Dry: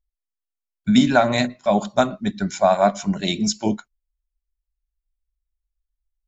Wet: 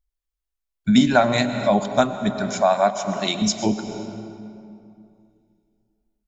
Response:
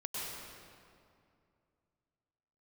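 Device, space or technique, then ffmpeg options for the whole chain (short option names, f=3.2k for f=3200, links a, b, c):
ducked reverb: -filter_complex "[0:a]asettb=1/sr,asplit=3[a][b][c];[a]atrim=end=2.324[d];[b]atrim=start=2.32:end=3.42,asetpts=PTS-STARTPTS,afade=t=in:d=0.004:c=qsin,afade=t=out:st=1.096:d=0.004:c=qsin,highpass=f=400:p=1[e];[c]atrim=start=3.416[f];[d][e]acrossfade=d=0.004:c1=hsin:c2=qsin[g];[g][f]acrossfade=d=0.004:c1=qsin:c2=hsin,asplit=3[h][i][j];[1:a]atrim=start_sample=2205[k];[i][k]afir=irnorm=-1:irlink=0[l];[j]apad=whole_len=276722[m];[l][m]sidechaincompress=threshold=-21dB:ratio=8:attack=6.5:release=390,volume=-4.5dB[n];[h][n]amix=inputs=2:normalize=0,volume=-1dB"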